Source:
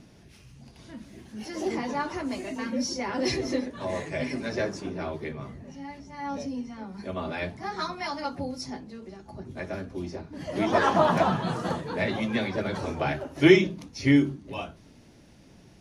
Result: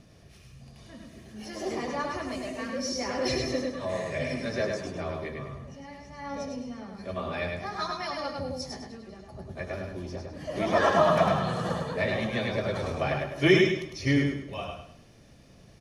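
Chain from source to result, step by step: comb 1.7 ms, depth 40%; feedback echo 0.103 s, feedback 36%, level -3.5 dB; gain -2.5 dB

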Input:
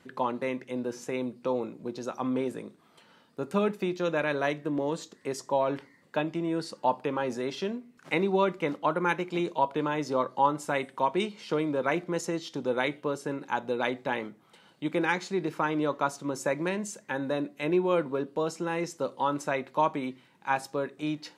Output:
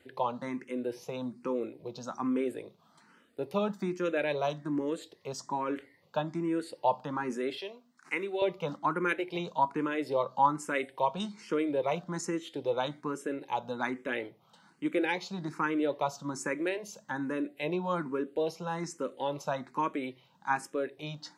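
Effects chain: 7.57–8.42 HPF 830 Hz 6 dB/oct; endless phaser +1.2 Hz

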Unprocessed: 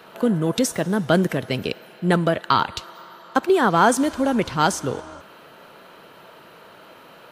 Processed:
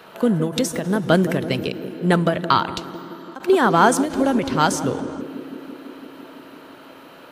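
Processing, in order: narrowing echo 0.167 s, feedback 84%, band-pass 310 Hz, level -9.5 dB; ending taper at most 140 dB/s; gain +1.5 dB

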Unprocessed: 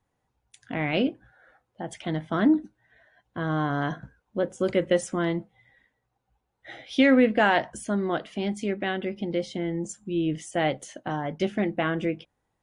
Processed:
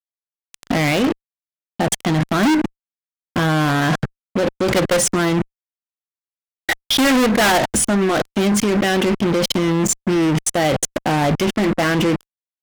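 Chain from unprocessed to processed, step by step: level quantiser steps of 21 dB; fuzz box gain 46 dB, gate -51 dBFS

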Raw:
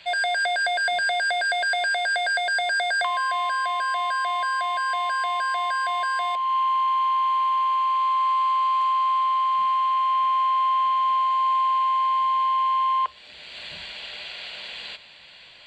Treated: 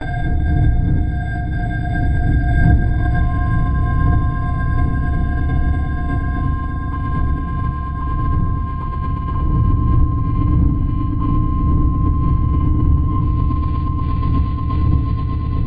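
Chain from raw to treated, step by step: stepped spectrum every 0.4 s; wind noise 120 Hz -20 dBFS; RIAA curve playback; notches 50/100/150 Hz; gate with hold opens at -13 dBFS; low shelf 260 Hz -6 dB; compressor, threshold -10 dBFS, peak gain reduction 15.5 dB; on a send: swelling echo 0.119 s, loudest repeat 8, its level -12.5 dB; on the sum: FDN reverb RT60 0.43 s, low-frequency decay 1.5×, high-frequency decay 0.4×, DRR -9 dB; backwards sustainer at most 24 dB/s; gain -14 dB

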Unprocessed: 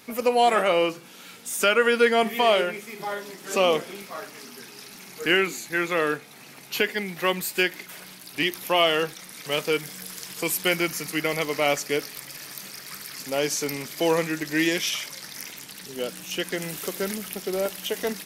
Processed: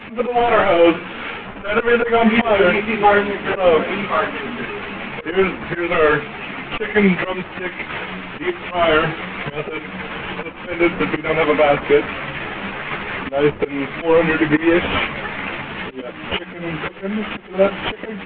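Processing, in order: CVSD 16 kbps; auto swell 0.356 s; maximiser +22.5 dB; ensemble effect; gain -1 dB

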